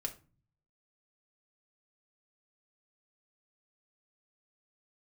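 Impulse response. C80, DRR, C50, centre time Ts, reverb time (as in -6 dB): 20.0 dB, 2.0 dB, 14.0 dB, 8 ms, 0.35 s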